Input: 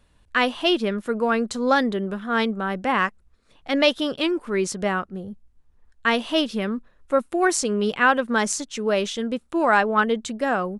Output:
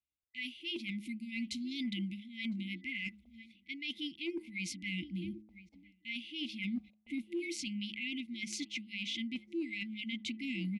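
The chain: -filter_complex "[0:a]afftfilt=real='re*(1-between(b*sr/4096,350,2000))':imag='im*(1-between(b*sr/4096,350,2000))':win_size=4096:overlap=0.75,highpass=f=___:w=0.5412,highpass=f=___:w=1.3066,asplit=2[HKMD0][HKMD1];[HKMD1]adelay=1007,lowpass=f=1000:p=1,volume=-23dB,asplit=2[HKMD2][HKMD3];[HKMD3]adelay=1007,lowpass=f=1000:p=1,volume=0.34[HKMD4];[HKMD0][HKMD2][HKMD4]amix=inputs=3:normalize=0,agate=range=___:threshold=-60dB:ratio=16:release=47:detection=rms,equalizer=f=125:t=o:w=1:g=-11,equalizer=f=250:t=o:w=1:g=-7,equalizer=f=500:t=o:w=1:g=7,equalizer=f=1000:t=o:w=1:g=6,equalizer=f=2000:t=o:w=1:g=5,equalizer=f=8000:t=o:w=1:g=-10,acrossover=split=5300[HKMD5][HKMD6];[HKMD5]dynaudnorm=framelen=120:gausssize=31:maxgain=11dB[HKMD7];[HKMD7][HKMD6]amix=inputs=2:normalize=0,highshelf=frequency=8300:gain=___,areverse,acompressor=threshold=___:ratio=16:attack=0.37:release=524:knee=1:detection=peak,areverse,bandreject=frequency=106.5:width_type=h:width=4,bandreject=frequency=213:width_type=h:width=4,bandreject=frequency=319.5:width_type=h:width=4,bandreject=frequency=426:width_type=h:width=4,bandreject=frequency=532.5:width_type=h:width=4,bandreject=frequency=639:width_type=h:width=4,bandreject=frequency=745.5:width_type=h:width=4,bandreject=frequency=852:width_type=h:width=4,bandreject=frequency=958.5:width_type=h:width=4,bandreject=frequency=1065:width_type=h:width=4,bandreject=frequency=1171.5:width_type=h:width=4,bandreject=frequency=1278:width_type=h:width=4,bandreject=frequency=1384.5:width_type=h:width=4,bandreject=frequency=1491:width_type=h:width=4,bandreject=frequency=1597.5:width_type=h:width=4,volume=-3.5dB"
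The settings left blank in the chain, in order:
67, 67, -29dB, 3.5, -28dB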